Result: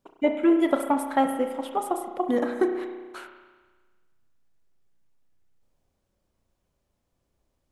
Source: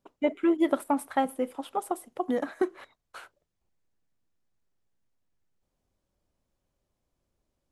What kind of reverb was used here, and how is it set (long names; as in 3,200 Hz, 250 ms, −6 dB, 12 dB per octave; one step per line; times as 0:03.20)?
spring reverb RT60 1.4 s, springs 33 ms, chirp 70 ms, DRR 5 dB
level +3 dB